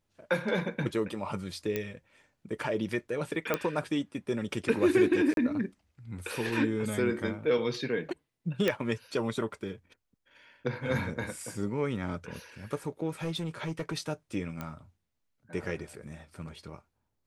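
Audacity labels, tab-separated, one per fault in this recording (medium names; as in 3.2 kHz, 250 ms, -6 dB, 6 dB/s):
1.760000	1.760000	pop -17 dBFS
3.540000	3.540000	pop -13 dBFS
5.340000	5.370000	dropout 32 ms
8.680000	8.680000	pop -13 dBFS
13.220000	13.940000	clipped -28 dBFS
14.610000	14.610000	pop -22 dBFS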